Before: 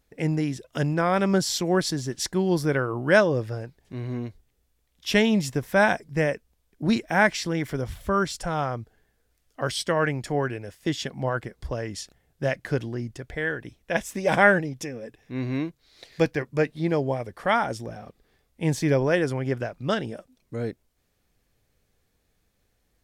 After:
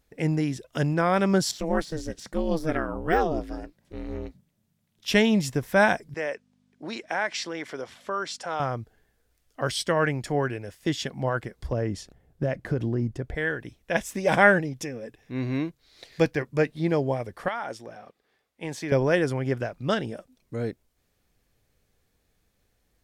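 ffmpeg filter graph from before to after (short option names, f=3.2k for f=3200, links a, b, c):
-filter_complex "[0:a]asettb=1/sr,asplit=3[a][b][c];[a]atrim=end=1.514[d];[b]atrim=start=1.51:end=5.08,asetpts=PTS-STARTPTS,afade=t=in:d=0.004:c=qsin,afade=t=out:st=3.566:d=0.004:c=qsin,deesser=0.8,aeval=exprs='val(0)*sin(2*PI*160*n/s)':c=same[e];[c]atrim=start=5.076[f];[d][e]acrossfade=d=0.004:c1=hsin:c2=qsin[g];[g][f]acrossfade=d=0.004:c1=qsin:c2=hsin,asettb=1/sr,asplit=3[h][i][j];[h]atrim=end=6.144[k];[i]atrim=start=6.14:end=8.6,asetpts=PTS-STARTPTS,afade=t=in:d=0.004:c=qsin,afade=t=out:st=2.456:d=0.004:c=qsin,acompressor=threshold=-22dB:ratio=4:attack=3.2:release=140:knee=1:detection=peak,aeval=exprs='val(0)+0.00631*(sin(2*PI*50*n/s)+sin(2*PI*2*50*n/s)/2+sin(2*PI*3*50*n/s)/3+sin(2*PI*4*50*n/s)/4+sin(2*PI*5*50*n/s)/5)':c=same,highpass=430,lowpass=6.9k[l];[j]atrim=start=8.596[m];[k][l]acrossfade=d=0.004:c1=hsin:c2=qsin[n];[n][m]acrossfade=d=0.004:c1=qsin:c2=hsin,asettb=1/sr,asplit=3[o][p][q];[o]atrim=end=11.724[r];[p]atrim=start=11.72:end=13.35,asetpts=PTS-STARTPTS,afade=t=in:d=0.004:c=qsin,afade=t=out:st=1.626:d=0.004:c=qsin,tiltshelf=f=1.2k:g=6.5,acompressor=threshold=-21dB:ratio=6:attack=3.2:release=140:knee=1:detection=peak[s];[q]atrim=start=13.346[t];[r][s]acrossfade=d=0.004:c1=hsin:c2=qsin[u];[u][t]acrossfade=d=0.004:c1=qsin:c2=hsin,asettb=1/sr,asplit=3[v][w][x];[v]atrim=end=17.484[y];[w]atrim=start=17.48:end=18.92,asetpts=PTS-STARTPTS,afade=t=in:d=0.004:c=qsin,afade=t=out:st=1.436:d=0.004:c=qsin,highpass=f=610:p=1,highshelf=f=4.9k:g=-8.5,acompressor=threshold=-26dB:ratio=6:attack=3.2:release=140:knee=1:detection=peak[z];[x]atrim=start=18.916[aa];[y][z]acrossfade=d=0.004:c1=hsin:c2=qsin[ab];[ab][aa]acrossfade=d=0.004:c1=qsin:c2=hsin"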